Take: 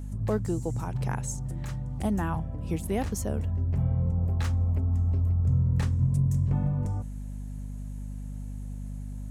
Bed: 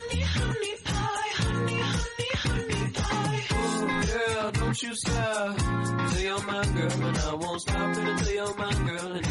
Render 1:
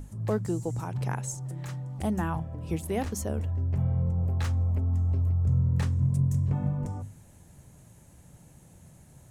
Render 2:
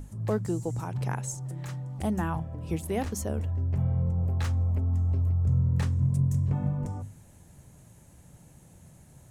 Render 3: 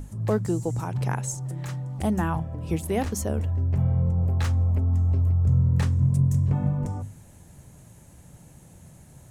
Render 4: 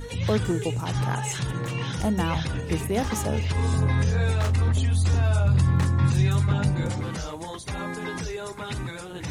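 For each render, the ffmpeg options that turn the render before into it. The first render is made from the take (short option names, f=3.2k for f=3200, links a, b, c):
-af "bandreject=f=50:t=h:w=6,bandreject=f=100:t=h:w=6,bandreject=f=150:t=h:w=6,bandreject=f=200:t=h:w=6,bandreject=f=250:t=h:w=6"
-af anull
-af "volume=4dB"
-filter_complex "[1:a]volume=-4.5dB[a];[0:a][a]amix=inputs=2:normalize=0"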